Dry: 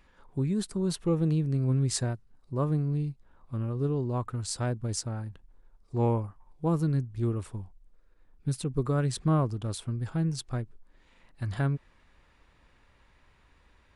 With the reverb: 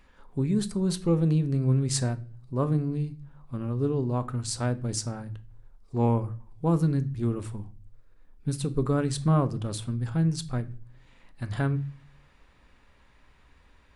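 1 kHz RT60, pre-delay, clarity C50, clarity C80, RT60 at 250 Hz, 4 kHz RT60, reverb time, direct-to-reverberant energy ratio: 0.35 s, 3 ms, 18.5 dB, 23.5 dB, 0.60 s, 0.35 s, 0.40 s, 11.0 dB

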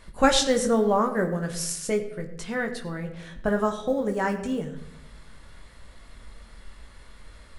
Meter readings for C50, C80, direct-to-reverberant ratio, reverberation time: 10.5 dB, 12.0 dB, 3.0 dB, 0.85 s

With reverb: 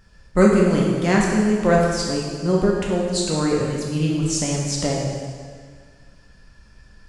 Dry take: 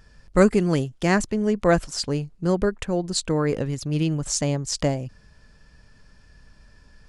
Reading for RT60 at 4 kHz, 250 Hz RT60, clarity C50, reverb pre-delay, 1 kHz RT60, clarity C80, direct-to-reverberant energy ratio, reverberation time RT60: 1.7 s, 1.7 s, 0.5 dB, 4 ms, 1.8 s, 2.5 dB, -3.5 dB, 1.8 s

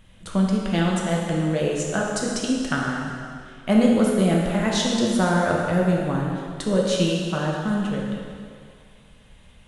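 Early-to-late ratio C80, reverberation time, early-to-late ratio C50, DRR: 2.0 dB, 2.2 s, 0.0 dB, -2.5 dB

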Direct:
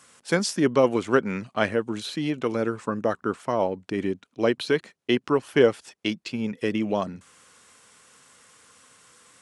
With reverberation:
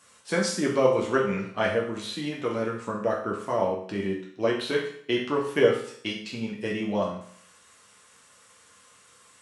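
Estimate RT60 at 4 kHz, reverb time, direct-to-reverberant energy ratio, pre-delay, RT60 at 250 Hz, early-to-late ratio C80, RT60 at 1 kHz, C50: 0.60 s, 0.60 s, -3.5 dB, 7 ms, 0.60 s, 8.5 dB, 0.60 s, 5.0 dB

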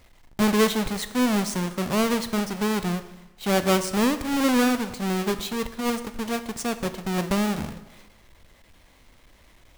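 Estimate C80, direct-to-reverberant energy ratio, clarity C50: 14.0 dB, 10.0 dB, 12.5 dB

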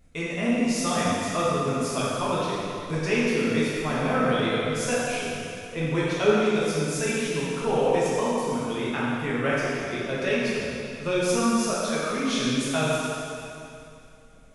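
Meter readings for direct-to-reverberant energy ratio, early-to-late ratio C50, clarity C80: -8.0 dB, -3.5 dB, -1.5 dB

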